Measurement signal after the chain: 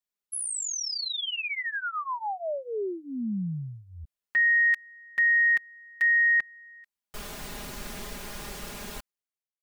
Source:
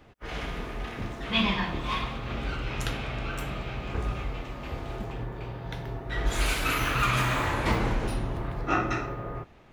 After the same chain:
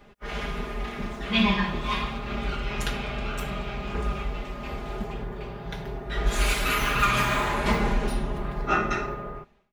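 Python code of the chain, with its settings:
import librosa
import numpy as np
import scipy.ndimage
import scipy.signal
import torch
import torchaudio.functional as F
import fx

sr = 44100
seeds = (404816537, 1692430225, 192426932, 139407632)

y = fx.fade_out_tail(x, sr, length_s=0.61)
y = y + 0.88 * np.pad(y, (int(4.9 * sr / 1000.0), 0))[:len(y)]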